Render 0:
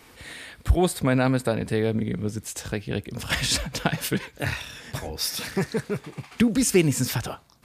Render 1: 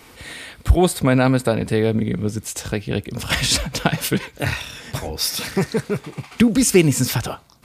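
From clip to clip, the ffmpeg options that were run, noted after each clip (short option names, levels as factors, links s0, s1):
-af "bandreject=f=1700:w=15,volume=1.88"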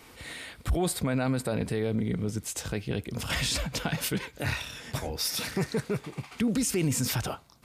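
-af "alimiter=limit=0.211:level=0:latency=1:release=15,volume=0.501"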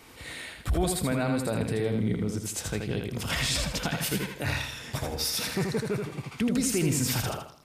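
-af "aecho=1:1:80|160|240|320:0.596|0.197|0.0649|0.0214"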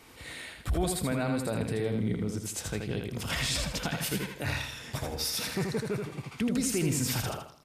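-af "aresample=32000,aresample=44100,volume=0.75"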